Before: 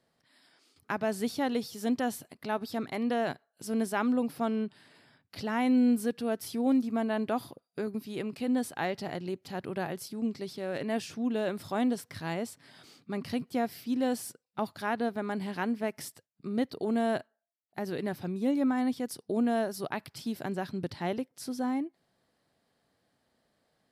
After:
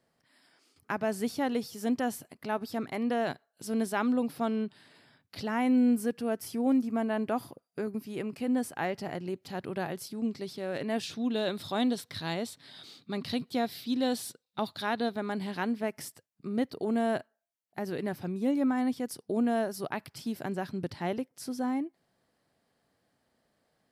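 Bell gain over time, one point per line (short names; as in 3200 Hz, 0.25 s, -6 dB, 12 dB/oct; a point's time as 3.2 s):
bell 3800 Hz 0.45 oct
-4.5 dB
from 3.21 s +2 dB
from 5.48 s -7.5 dB
from 9.34 s +1 dB
from 11.03 s +12.5 dB
from 15.16 s +5 dB
from 15.82 s -3 dB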